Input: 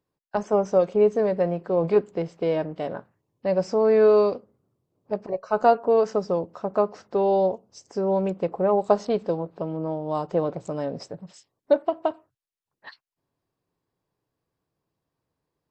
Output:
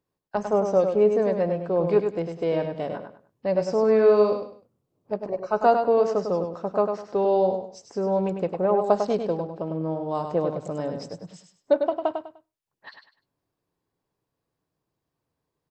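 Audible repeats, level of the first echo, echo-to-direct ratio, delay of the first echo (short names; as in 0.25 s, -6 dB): 3, -6.5 dB, -6.0 dB, 0.1 s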